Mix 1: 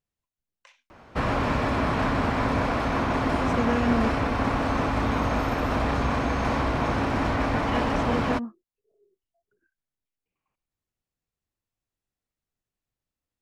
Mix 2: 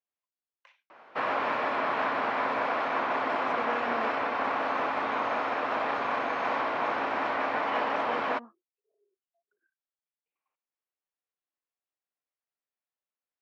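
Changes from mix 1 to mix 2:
speech -3.0 dB; master: add band-pass 550–3000 Hz

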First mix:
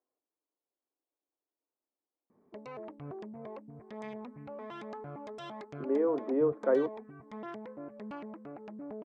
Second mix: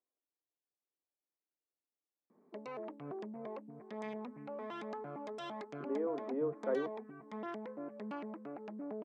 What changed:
speech -8.0 dB; master: add high-pass 170 Hz 24 dB/octave

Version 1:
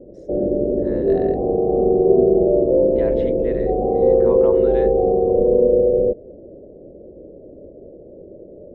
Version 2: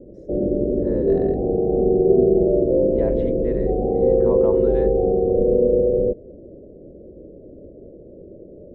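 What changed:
background -6.0 dB; master: add tilt shelf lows +8.5 dB, about 760 Hz

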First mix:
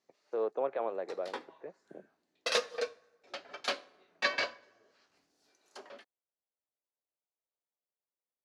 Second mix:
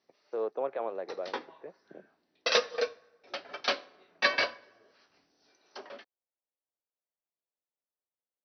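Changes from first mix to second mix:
background +4.5 dB; master: add brick-wall FIR low-pass 6.1 kHz

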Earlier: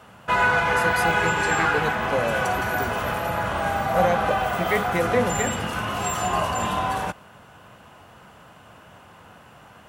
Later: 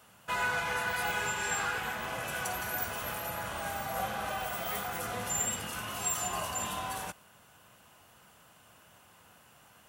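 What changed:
speech -10.0 dB; master: add pre-emphasis filter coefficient 0.8

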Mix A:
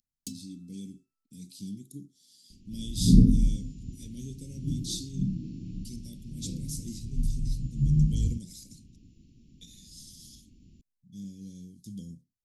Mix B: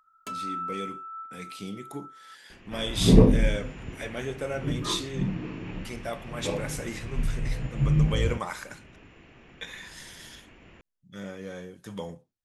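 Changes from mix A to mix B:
first sound -7.5 dB; master: remove Chebyshev band-stop 250–4600 Hz, order 3

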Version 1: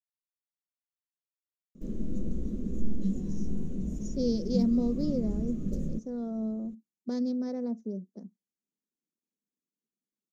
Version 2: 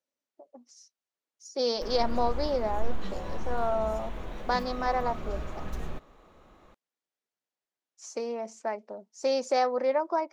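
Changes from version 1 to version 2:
speech: entry -2.60 s; master: remove FFT filter 110 Hz 0 dB, 200 Hz +14 dB, 500 Hz -5 dB, 830 Hz -27 dB, 2 kHz -22 dB, 4.4 kHz -14 dB, 6.7 kHz 0 dB, 10 kHz -9 dB

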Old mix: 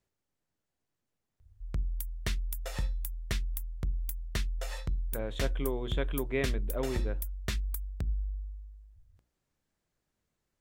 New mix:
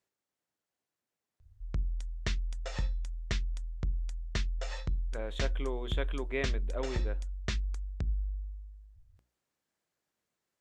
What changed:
speech: add high-pass 400 Hz 6 dB/octave; background: add steep low-pass 7.1 kHz 36 dB/octave

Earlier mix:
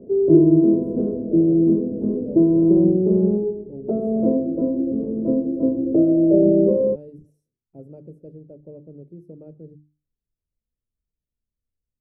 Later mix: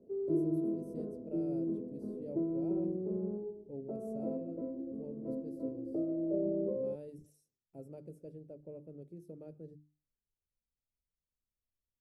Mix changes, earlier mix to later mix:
background -11.0 dB; master: add tilt shelf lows -9.5 dB, about 1.2 kHz

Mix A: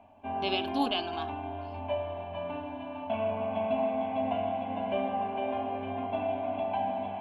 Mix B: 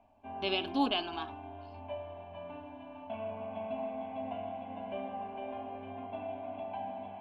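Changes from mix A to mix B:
background -8.5 dB; master: add distance through air 56 m

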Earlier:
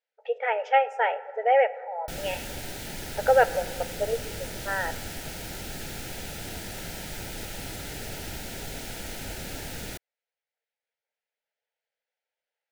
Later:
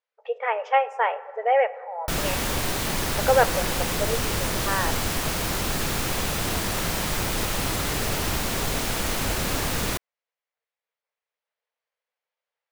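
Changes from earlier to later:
background +10.5 dB; master: remove Butterworth band-stop 1.1 kHz, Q 2.8

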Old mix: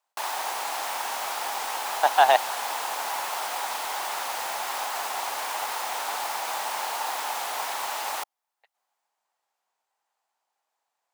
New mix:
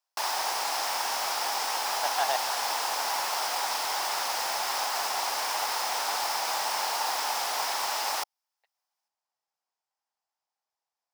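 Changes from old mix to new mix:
speech -11.0 dB; master: add peaking EQ 5.2 kHz +9.5 dB 0.4 oct

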